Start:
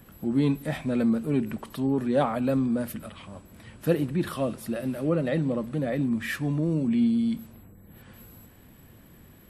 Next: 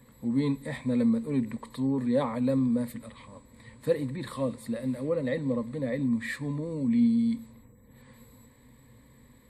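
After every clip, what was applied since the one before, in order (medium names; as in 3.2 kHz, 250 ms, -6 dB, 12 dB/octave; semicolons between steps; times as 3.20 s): rippled EQ curve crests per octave 0.99, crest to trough 13 dB; trim -6 dB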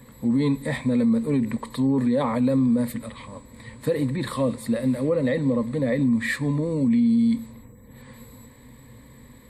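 peak limiter -23 dBFS, peak gain reduction 9 dB; trim +8.5 dB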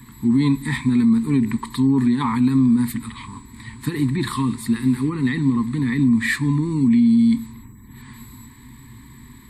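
Chebyshev band-stop 380–900 Hz, order 3; trim +5.5 dB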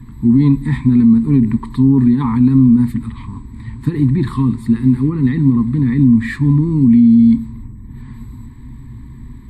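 tilt EQ -3.5 dB/octave; trim -1 dB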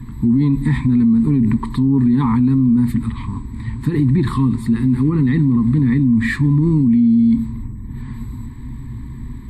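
peak limiter -11.5 dBFS, peak gain reduction 9.5 dB; trim +3.5 dB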